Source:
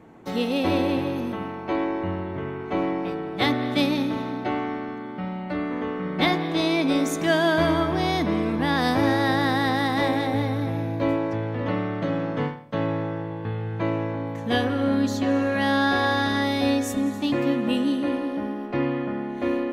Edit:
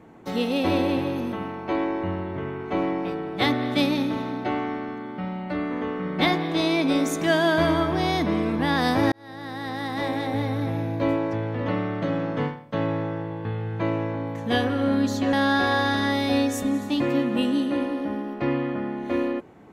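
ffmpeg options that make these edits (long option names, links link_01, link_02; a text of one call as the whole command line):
ffmpeg -i in.wav -filter_complex "[0:a]asplit=3[link_01][link_02][link_03];[link_01]atrim=end=9.12,asetpts=PTS-STARTPTS,afade=type=out:start_time=9.116:duration=0.004:curve=hsin[link_04];[link_02]atrim=start=9.12:end=15.332,asetpts=PTS-STARTPTS,afade=type=in:duration=1.55[link_05];[link_03]atrim=start=15.648[link_06];[link_04][link_05]concat=n=2:v=0:a=1[link_07];[link_07][link_06]acrossfade=duration=0.004:curve1=hsin:curve2=hsin" out.wav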